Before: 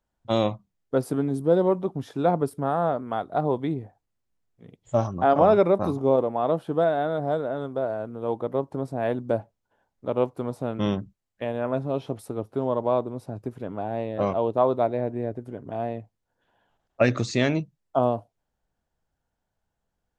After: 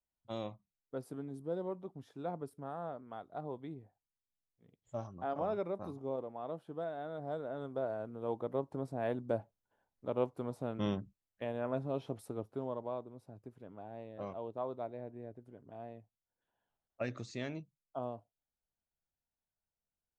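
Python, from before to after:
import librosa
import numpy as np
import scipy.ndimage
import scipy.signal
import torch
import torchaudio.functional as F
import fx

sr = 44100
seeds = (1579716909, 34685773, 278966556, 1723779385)

y = fx.gain(x, sr, db=fx.line((6.92, -18.0), (7.77, -9.5), (12.36, -9.5), (13.01, -18.0)))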